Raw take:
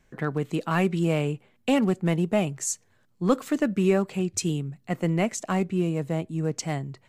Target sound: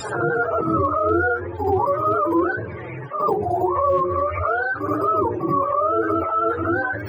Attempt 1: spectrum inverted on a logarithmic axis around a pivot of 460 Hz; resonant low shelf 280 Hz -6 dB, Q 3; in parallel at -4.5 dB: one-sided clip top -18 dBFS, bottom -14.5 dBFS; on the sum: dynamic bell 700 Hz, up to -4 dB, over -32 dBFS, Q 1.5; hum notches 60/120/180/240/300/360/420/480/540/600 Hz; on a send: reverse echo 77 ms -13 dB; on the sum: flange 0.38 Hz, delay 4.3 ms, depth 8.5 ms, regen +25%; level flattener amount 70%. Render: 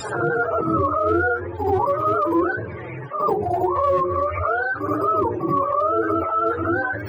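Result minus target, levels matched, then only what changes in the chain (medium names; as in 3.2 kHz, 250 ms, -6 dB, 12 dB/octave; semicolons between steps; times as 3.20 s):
one-sided clip: distortion +9 dB
change: one-sided clip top -6.5 dBFS, bottom -14.5 dBFS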